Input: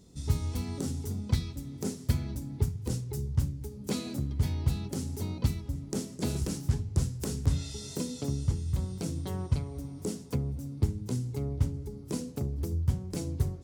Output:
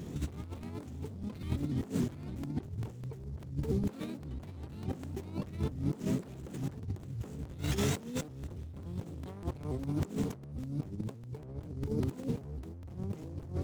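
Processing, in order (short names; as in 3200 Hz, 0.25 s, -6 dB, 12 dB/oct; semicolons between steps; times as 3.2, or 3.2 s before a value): median filter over 9 samples; overloaded stage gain 31 dB; HPF 83 Hz 12 dB/oct; negative-ratio compressor -44 dBFS, ratio -0.5; crackling interface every 0.20 s, samples 128, repeat, from 0.43; shaped vibrato saw up 3.5 Hz, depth 160 cents; gain +8 dB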